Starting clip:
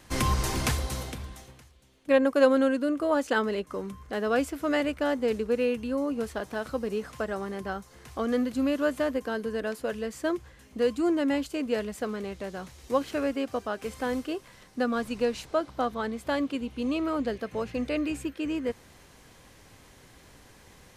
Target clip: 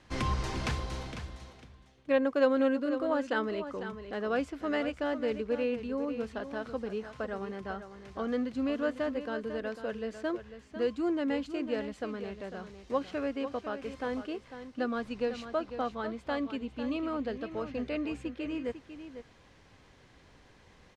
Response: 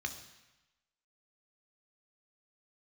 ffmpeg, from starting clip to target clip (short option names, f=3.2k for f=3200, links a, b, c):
-af "lowpass=4.7k,aecho=1:1:499:0.299,volume=-5dB"